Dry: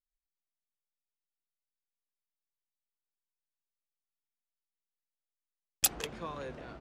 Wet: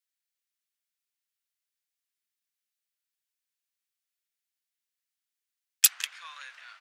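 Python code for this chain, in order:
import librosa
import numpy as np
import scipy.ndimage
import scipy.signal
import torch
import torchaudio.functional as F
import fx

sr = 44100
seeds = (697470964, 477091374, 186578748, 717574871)

y = scipy.signal.sosfilt(scipy.signal.butter(4, 1500.0, 'highpass', fs=sr, output='sos'), x)
y = F.gain(torch.from_numpy(y), 7.5).numpy()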